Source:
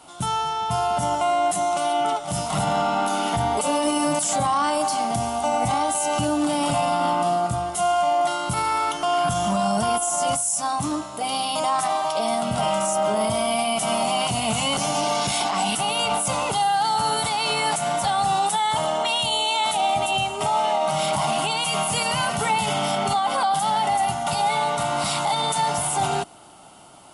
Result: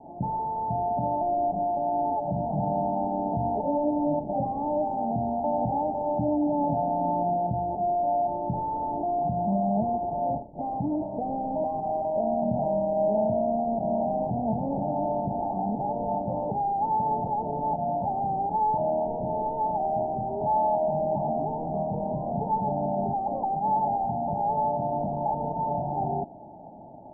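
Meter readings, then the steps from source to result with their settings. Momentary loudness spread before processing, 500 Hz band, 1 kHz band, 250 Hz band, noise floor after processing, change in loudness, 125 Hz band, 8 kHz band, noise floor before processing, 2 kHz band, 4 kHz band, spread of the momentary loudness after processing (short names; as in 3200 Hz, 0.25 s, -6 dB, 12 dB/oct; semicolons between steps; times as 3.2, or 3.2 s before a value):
3 LU, -2.0 dB, -5.0 dB, -0.5 dB, -35 dBFS, -5.0 dB, -2.0 dB, under -40 dB, -31 dBFS, under -40 dB, under -40 dB, 4 LU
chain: CVSD 16 kbps; in parallel at -3 dB: negative-ratio compressor -32 dBFS, ratio -1; on the sum: rippled Chebyshev low-pass 890 Hz, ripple 6 dB; gain -1 dB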